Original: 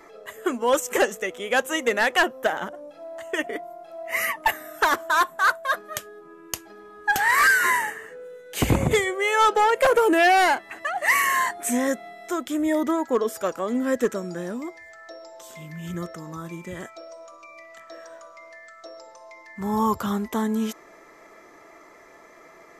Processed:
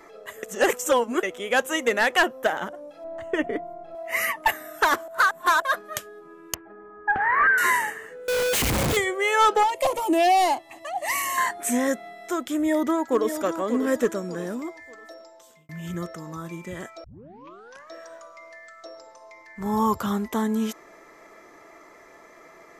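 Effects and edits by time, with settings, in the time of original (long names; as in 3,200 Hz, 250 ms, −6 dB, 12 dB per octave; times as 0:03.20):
0:00.43–0:01.23: reverse
0:03.04–0:03.95: RIAA equalisation playback
0:05.08–0:05.62: reverse
0:06.54–0:07.58: low-pass filter 1,800 Hz 24 dB per octave
0:08.28–0:08.97: sign of each sample alone
0:09.63–0:11.38: phaser with its sweep stopped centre 300 Hz, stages 8
0:12.52–0:13.44: delay throw 590 ms, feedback 35%, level −9 dB
0:14.66–0:15.69: fade out equal-power
0:17.04: tape start 0.88 s
0:18.95–0:19.66: amplitude modulation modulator 230 Hz, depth 25%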